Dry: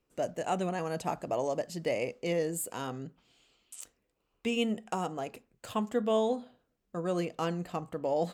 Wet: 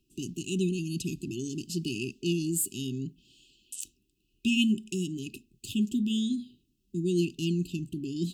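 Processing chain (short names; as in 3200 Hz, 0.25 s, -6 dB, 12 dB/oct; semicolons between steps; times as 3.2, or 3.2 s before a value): brick-wall FIR band-stop 400–2500 Hz; gain +7 dB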